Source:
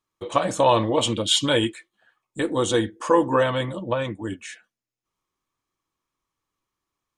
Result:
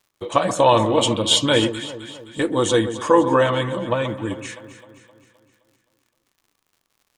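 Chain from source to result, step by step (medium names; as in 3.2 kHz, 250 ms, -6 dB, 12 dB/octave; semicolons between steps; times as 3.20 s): crackle 81 per s -50 dBFS; echo whose repeats swap between lows and highs 130 ms, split 1.3 kHz, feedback 71%, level -10.5 dB; trim +3 dB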